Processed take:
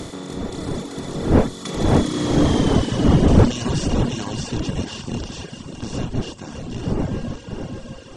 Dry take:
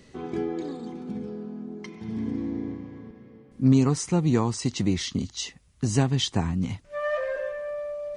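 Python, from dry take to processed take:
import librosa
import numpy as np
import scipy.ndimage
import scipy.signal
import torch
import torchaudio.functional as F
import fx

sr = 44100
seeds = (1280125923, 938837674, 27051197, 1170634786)

p1 = fx.bin_compress(x, sr, power=0.2)
p2 = fx.dmg_wind(p1, sr, seeds[0], corner_hz=280.0, level_db=-13.0)
p3 = fx.doppler_pass(p2, sr, speed_mps=37, closest_m=21.0, pass_at_s=2.67)
p4 = 10.0 ** (-14.0 / 20.0) * np.tanh(p3 / 10.0 ** (-14.0 / 20.0))
p5 = p3 + (p4 * 10.0 ** (-5.0 / 20.0))
p6 = fx.high_shelf(p5, sr, hz=9100.0, db=4.0)
p7 = p6 + fx.echo_single(p6, sr, ms=608, db=-7.5, dry=0)
p8 = fx.dereverb_blind(p7, sr, rt60_s=1.0)
y = p8 * 10.0 ** (-2.5 / 20.0)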